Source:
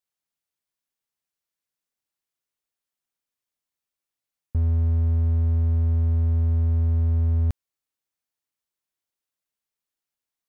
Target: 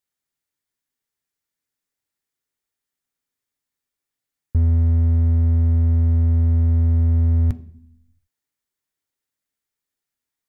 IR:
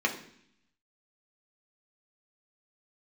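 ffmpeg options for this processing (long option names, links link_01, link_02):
-filter_complex "[0:a]asplit=2[link_01][link_02];[1:a]atrim=start_sample=2205,lowshelf=frequency=260:gain=11.5[link_03];[link_02][link_03]afir=irnorm=-1:irlink=0,volume=-18.5dB[link_04];[link_01][link_04]amix=inputs=2:normalize=0,volume=3.5dB"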